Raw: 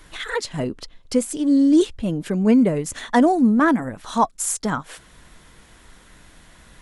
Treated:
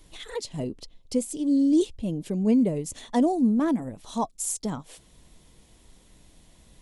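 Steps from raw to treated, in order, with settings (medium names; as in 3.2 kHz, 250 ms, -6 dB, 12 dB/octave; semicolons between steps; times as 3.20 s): peaking EQ 1.5 kHz -15 dB 1.1 oct; trim -5 dB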